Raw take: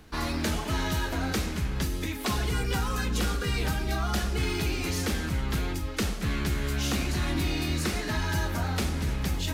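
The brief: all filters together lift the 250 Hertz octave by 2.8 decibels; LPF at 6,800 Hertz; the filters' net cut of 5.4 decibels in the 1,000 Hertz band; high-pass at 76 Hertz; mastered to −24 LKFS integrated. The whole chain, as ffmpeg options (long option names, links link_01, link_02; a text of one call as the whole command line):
ffmpeg -i in.wav -af "highpass=76,lowpass=6800,equalizer=frequency=250:width_type=o:gain=4,equalizer=frequency=1000:width_type=o:gain=-7.5,volume=6dB" out.wav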